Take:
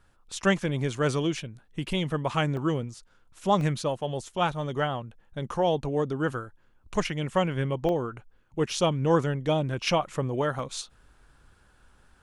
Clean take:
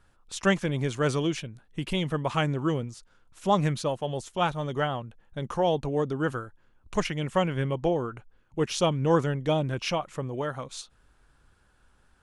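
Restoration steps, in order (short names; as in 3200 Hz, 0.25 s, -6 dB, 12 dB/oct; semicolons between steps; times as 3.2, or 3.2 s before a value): interpolate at 2.57/3.61/7.89/10.59, 1.4 ms; gain correction -4 dB, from 9.87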